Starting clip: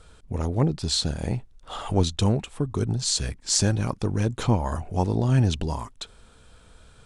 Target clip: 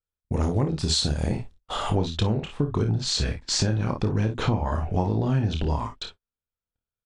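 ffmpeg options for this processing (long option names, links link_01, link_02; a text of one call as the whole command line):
ffmpeg -i in.wav -af "asetnsamples=nb_out_samples=441:pad=0,asendcmd='1.9 lowpass f 3900',lowpass=9700,agate=range=-50dB:threshold=-41dB:ratio=16:detection=peak,aecho=1:1:28|53|65:0.473|0.316|0.168,acompressor=threshold=-25dB:ratio=6,volume=5dB" out.wav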